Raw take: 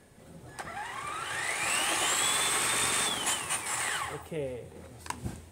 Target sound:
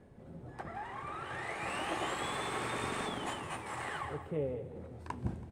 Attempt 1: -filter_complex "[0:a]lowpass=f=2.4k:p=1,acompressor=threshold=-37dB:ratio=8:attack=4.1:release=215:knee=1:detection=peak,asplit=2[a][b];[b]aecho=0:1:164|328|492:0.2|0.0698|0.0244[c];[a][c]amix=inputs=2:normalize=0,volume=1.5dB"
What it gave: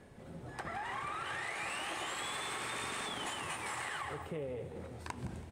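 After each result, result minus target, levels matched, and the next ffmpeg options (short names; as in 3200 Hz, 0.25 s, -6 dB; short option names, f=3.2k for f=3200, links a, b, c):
compressor: peak gain reduction +10.5 dB; 500 Hz band -3.5 dB
-filter_complex "[0:a]lowpass=f=2.4k:p=1,asplit=2[a][b];[b]aecho=0:1:164|328|492:0.2|0.0698|0.0244[c];[a][c]amix=inputs=2:normalize=0,volume=1.5dB"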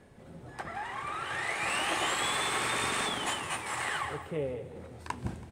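500 Hz band -4.5 dB
-filter_complex "[0:a]lowpass=f=610:p=1,asplit=2[a][b];[b]aecho=0:1:164|328|492:0.2|0.0698|0.0244[c];[a][c]amix=inputs=2:normalize=0,volume=1.5dB"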